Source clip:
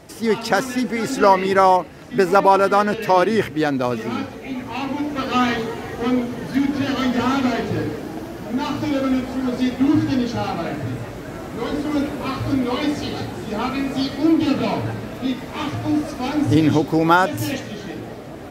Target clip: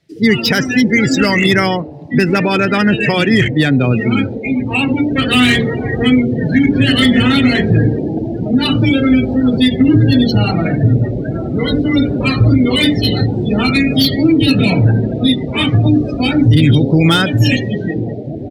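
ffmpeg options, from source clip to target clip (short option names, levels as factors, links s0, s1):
-filter_complex "[0:a]asettb=1/sr,asplit=3[s0][s1][s2];[s0]atrim=end=14.614[s3];[s1]atrim=start=14.61:end=16.26,asetpts=PTS-STARTPTS,afade=t=in:d=0.004:c=qsin,afade=t=out:st=1.646:d=0.004:c=qsin,lowpass=10000[s4];[s2]atrim=start=16.256[s5];[s3][s4]acrossfade=d=0.004:c1=hsin:c2=qsin[s6];[s6][s5]acrossfade=d=0.004:c1=qsin:c2=hsin,afftdn=nr=35:nf=-28,equalizer=f=125:t=o:w=1:g=5,equalizer=f=1000:t=o:w=1:g=-10,equalizer=f=2000:t=o:w=1:g=7,equalizer=f=4000:t=o:w=1:g=11,acrossover=split=240|1900[s7][s8][s9];[s7]asplit=6[s10][s11][s12][s13][s14][s15];[s11]adelay=107,afreqshift=130,volume=0.2[s16];[s12]adelay=214,afreqshift=260,volume=0.0977[s17];[s13]adelay=321,afreqshift=390,volume=0.0479[s18];[s14]adelay=428,afreqshift=520,volume=0.0234[s19];[s15]adelay=535,afreqshift=650,volume=0.0115[s20];[s10][s16][s17][s18][s19][s20]amix=inputs=6:normalize=0[s21];[s8]acompressor=threshold=0.0282:ratio=6[s22];[s9]asoftclip=type=tanh:threshold=0.0668[s23];[s21][s22][s23]amix=inputs=3:normalize=0,alimiter=level_in=5.01:limit=0.891:release=50:level=0:latency=1,volume=0.891"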